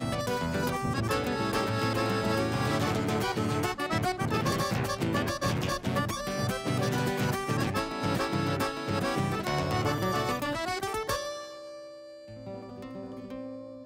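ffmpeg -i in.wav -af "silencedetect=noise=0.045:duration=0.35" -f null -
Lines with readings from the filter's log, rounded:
silence_start: 11.28
silence_end: 13.85 | silence_duration: 2.58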